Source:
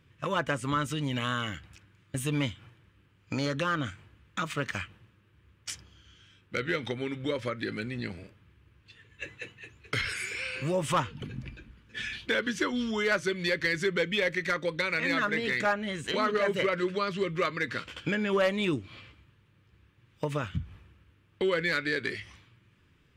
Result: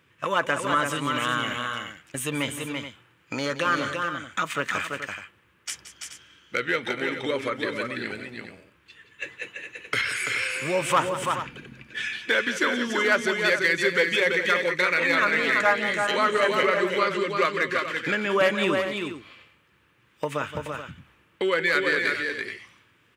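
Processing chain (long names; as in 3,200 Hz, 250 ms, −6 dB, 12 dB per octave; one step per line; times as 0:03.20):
high-pass filter 580 Hz 6 dB per octave
parametric band 4,500 Hz −5 dB 1.2 octaves
on a send: multi-tap delay 174/336/428 ms −12.5/−5/−11.5 dB
on the sum: level +7.5 dB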